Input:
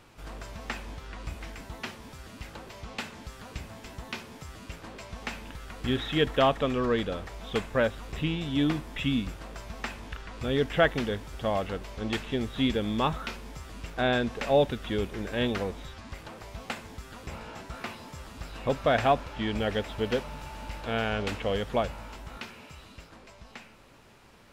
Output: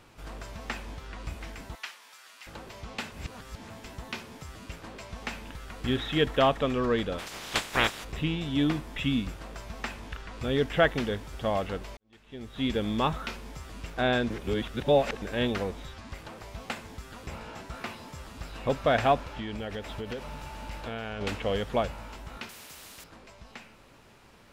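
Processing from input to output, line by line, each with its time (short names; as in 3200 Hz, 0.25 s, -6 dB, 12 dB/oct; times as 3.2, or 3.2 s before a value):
1.75–2.47 HPF 1200 Hz
3.12–3.7 reverse
7.18–8.03 spectral limiter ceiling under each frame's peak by 29 dB
11.97–12.78 fade in quadratic
14.3–15.22 reverse
19.29–21.21 compressor 10:1, threshold -31 dBFS
22.49–23.04 spectral compressor 4:1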